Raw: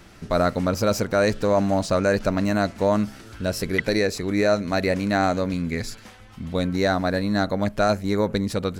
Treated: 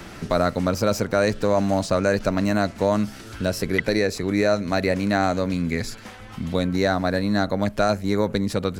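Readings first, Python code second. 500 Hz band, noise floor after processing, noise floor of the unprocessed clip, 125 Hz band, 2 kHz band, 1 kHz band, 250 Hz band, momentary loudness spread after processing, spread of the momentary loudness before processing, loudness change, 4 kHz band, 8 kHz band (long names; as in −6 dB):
0.0 dB, −40 dBFS, −46 dBFS, +0.5 dB, +0.5 dB, 0.0 dB, +0.5 dB, 6 LU, 7 LU, +0.5 dB, +0.5 dB, 0.0 dB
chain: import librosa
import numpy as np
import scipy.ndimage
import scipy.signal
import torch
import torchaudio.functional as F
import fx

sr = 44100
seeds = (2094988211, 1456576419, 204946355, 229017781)

y = fx.band_squash(x, sr, depth_pct=40)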